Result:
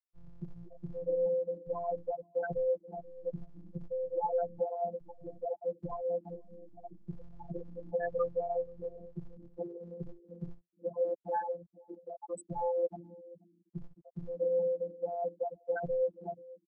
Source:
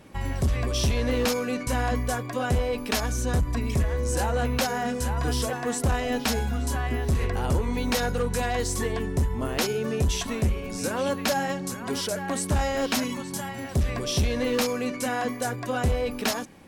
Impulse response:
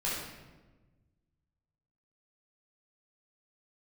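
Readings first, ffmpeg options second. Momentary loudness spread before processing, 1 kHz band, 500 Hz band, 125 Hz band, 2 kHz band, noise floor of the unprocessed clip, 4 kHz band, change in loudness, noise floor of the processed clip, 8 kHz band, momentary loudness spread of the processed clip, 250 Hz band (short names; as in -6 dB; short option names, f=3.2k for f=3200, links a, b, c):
4 LU, -10.0 dB, -4.0 dB, -21.0 dB, -20.5 dB, -35 dBFS, under -40 dB, -9.0 dB, -73 dBFS, under -30 dB, 16 LU, -19.0 dB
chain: -filter_complex "[0:a]afftfilt=real='re*gte(hypot(re,im),0.251)':imag='im*gte(hypot(re,im),0.251)':win_size=1024:overlap=0.75,afftfilt=real='hypot(re,im)*cos(PI*b)':imag='0':win_size=1024:overlap=0.75,bass=f=250:g=-8,treble=f=4k:g=13,acrossover=split=170|510|6500[a][b][c][d];[b]aecho=1:1:482:0.335[e];[c]acontrast=79[f];[a][e][f][d]amix=inputs=4:normalize=0,volume=-3.5dB"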